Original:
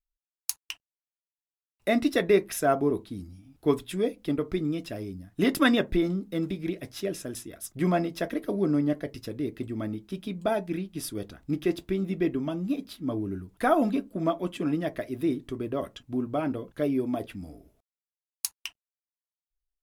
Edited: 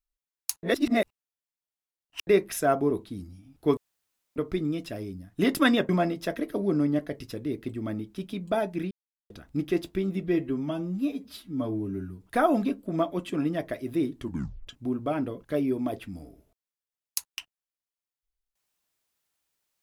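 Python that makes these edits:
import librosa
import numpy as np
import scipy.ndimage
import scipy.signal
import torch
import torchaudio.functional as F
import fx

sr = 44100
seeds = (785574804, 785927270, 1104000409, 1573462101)

y = fx.edit(x, sr, fx.reverse_span(start_s=0.63, length_s=1.64),
    fx.room_tone_fill(start_s=3.77, length_s=0.59),
    fx.cut(start_s=5.89, length_s=1.94),
    fx.silence(start_s=10.85, length_s=0.39),
    fx.stretch_span(start_s=12.17, length_s=1.33, factor=1.5),
    fx.tape_stop(start_s=15.49, length_s=0.46), tone=tone)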